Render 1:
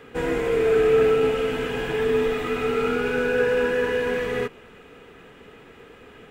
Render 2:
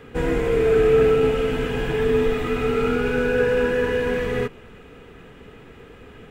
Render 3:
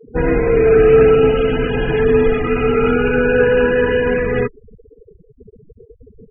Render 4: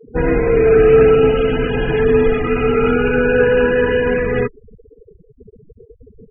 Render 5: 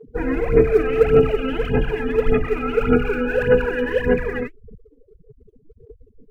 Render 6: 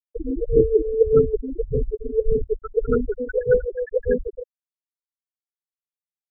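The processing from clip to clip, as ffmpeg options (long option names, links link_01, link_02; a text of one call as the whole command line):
ffmpeg -i in.wav -af "lowshelf=frequency=180:gain=11" out.wav
ffmpeg -i in.wav -af "afftfilt=real='re*gte(hypot(re,im),0.0398)':imag='im*gte(hypot(re,im),0.0398)':win_size=1024:overlap=0.75,highshelf=frequency=5200:gain=6,volume=6.5dB" out.wav
ffmpeg -i in.wav -af anull out.wav
ffmpeg -i in.wav -af "aphaser=in_gain=1:out_gain=1:delay=3.8:decay=0.74:speed=1.7:type=sinusoidal,volume=-9.5dB" out.wav
ffmpeg -i in.wav -af "bandreject=frequency=50:width_type=h:width=6,bandreject=frequency=100:width_type=h:width=6,bandreject=frequency=150:width_type=h:width=6,bandreject=frequency=200:width_type=h:width=6,bandreject=frequency=250:width_type=h:width=6,afftfilt=real='re*gte(hypot(re,im),0.501)':imag='im*gte(hypot(re,im),0.501)':win_size=1024:overlap=0.75,volume=-1.5dB" out.wav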